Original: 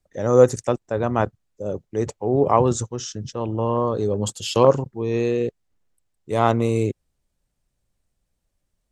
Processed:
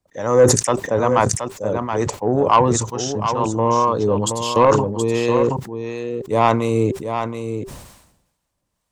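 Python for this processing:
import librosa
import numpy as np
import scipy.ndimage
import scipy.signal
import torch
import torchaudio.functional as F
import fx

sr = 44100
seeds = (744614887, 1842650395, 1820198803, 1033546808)

p1 = fx.highpass(x, sr, hz=120.0, slope=6)
p2 = fx.peak_eq(p1, sr, hz=1000.0, db=8.0, octaves=0.44)
p3 = fx.notch(p2, sr, hz=390.0, q=12.0)
p4 = fx.rider(p3, sr, range_db=3, speed_s=0.5)
p5 = p3 + (p4 * 10.0 ** (1.5 / 20.0))
p6 = fx.harmonic_tremolo(p5, sr, hz=2.2, depth_pct=50, crossover_hz=770.0)
p7 = 10.0 ** (-3.0 / 20.0) * np.tanh(p6 / 10.0 ** (-3.0 / 20.0))
p8 = p7 + fx.echo_single(p7, sr, ms=724, db=-8.0, dry=0)
p9 = fx.sustainer(p8, sr, db_per_s=63.0)
y = p9 * 10.0 ** (-1.5 / 20.0)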